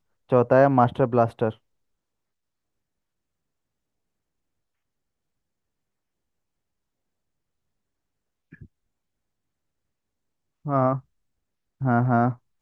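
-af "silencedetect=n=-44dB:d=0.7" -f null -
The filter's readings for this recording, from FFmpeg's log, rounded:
silence_start: 1.55
silence_end: 8.53 | silence_duration: 6.98
silence_start: 8.65
silence_end: 10.65 | silence_duration: 2.00
silence_start: 11.00
silence_end: 11.81 | silence_duration: 0.80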